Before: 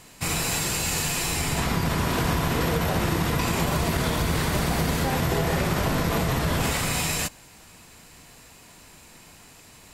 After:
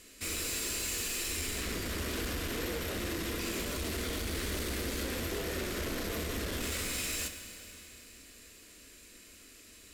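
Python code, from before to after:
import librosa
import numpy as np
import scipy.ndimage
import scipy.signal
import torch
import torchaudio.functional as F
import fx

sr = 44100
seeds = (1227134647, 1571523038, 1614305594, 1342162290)

y = fx.fixed_phaser(x, sr, hz=350.0, stages=4)
y = fx.tube_stage(y, sr, drive_db=29.0, bias=0.35)
y = fx.rev_schroeder(y, sr, rt60_s=3.2, comb_ms=26, drr_db=8.0)
y = y * 10.0 ** (-3.0 / 20.0)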